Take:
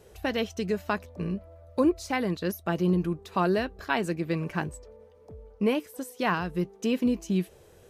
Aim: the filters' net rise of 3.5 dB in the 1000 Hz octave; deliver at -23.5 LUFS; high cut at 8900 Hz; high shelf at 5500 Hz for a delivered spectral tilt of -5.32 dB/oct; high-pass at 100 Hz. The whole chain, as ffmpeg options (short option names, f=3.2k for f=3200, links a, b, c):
-af "highpass=100,lowpass=8.9k,equalizer=f=1k:t=o:g=4.5,highshelf=f=5.5k:g=-4.5,volume=5dB"